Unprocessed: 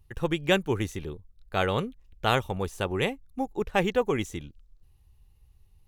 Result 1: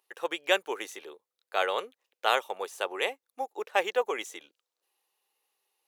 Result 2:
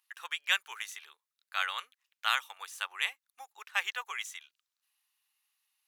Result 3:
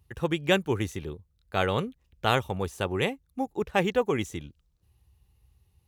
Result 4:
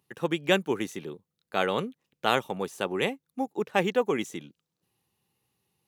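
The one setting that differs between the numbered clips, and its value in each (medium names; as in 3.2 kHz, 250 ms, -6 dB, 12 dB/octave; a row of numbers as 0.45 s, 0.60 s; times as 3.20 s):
high-pass, cutoff frequency: 470 Hz, 1.2 kHz, 53 Hz, 170 Hz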